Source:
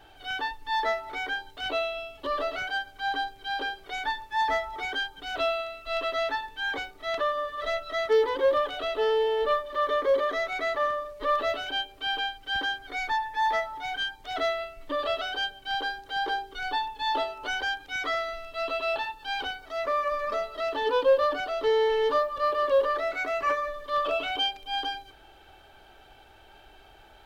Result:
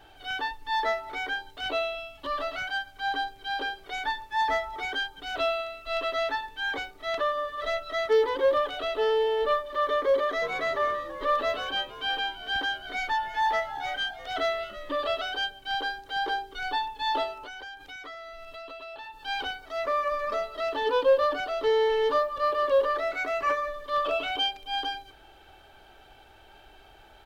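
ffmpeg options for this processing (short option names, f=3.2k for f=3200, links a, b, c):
-filter_complex "[0:a]asettb=1/sr,asplit=3[a][b][c];[a]atrim=end=1.954[d];[b]atrim=start=1.95:end=2.97,asetpts=PTS-STARTPTS,afade=t=in:d=0.004:c=qsin,afade=t=out:st=1.016:d=0.004:c=qsin,equalizer=f=430:t=o:w=0.75:g=-10[e];[c]atrim=start=2.966[f];[d][e]acrossfade=d=0.004:c1=hsin:c2=qsin[g];[g][f]acrossfade=d=0.004:c1=qsin:c2=hsin,asplit=3[h][i][j];[h]afade=t=out:st=10.41:d=0.02[k];[i]asplit=6[l][m][n][o][p][q];[m]adelay=329,afreqshift=-72,volume=-14.5dB[r];[n]adelay=658,afreqshift=-144,volume=-20.7dB[s];[o]adelay=987,afreqshift=-216,volume=-26.9dB[t];[p]adelay=1316,afreqshift=-288,volume=-33.1dB[u];[q]adelay=1645,afreqshift=-360,volume=-39.3dB[v];[l][r][s][t][u][v]amix=inputs=6:normalize=0,afade=t=in:st=10.41:d=0.02,afade=t=out:st=14.97:d=0.02[w];[j]afade=t=in:st=14.97:d=0.02[x];[k][w][x]amix=inputs=3:normalize=0,asettb=1/sr,asplit=3[y][z][aa];[y]atrim=end=17.384[ab];[z]atrim=start=17.38:end=19.15,asetpts=PTS-STARTPTS,afade=t=in:d=0.004:c=qsin,afade=t=out:st=1.766:d=0.004:c=qsin,acompressor=threshold=-39dB:ratio=6:attack=3.2:release=140:knee=1:detection=peak[ac];[aa]atrim=start=19.146[ad];[ab][ac]acrossfade=d=0.004:c1=hsin:c2=qsin[ae];[ae][ad]acrossfade=d=0.004:c1=qsin:c2=hsin"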